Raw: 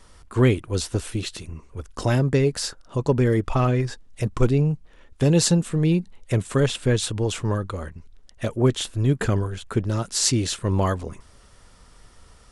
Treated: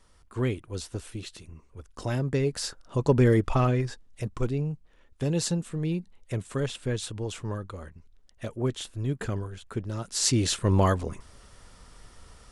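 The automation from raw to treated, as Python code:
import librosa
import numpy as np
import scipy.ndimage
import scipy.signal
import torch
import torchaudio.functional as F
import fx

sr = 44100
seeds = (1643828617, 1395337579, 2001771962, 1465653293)

y = fx.gain(x, sr, db=fx.line((1.9, -10.0), (3.27, 0.0), (4.42, -9.0), (9.95, -9.0), (10.48, 0.0)))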